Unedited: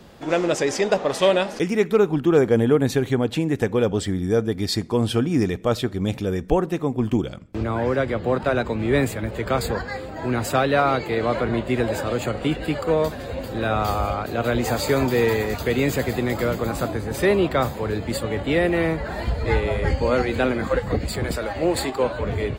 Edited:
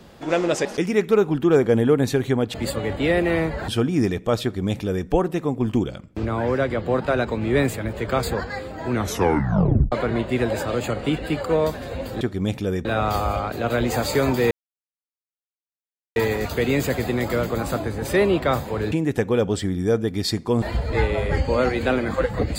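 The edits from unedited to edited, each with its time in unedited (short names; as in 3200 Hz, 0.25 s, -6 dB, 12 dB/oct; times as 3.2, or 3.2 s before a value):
0.65–1.47 cut
3.36–5.06 swap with 18.01–19.15
5.81–6.45 copy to 13.59
10.29 tape stop 1.01 s
15.25 insert silence 1.65 s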